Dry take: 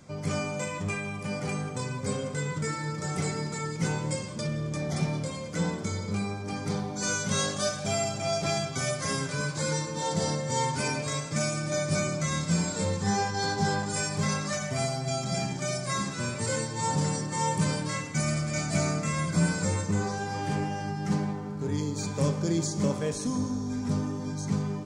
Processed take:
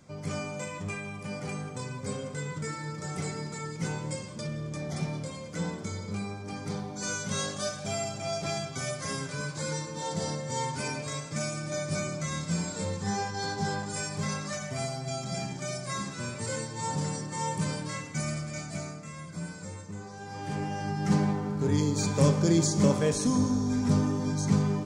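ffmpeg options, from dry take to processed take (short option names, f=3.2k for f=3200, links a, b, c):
-af "volume=13dB,afade=t=out:st=18.23:d=0.74:silence=0.354813,afade=t=in:st=20.1:d=0.45:silence=0.354813,afade=t=in:st=20.55:d=0.73:silence=0.398107"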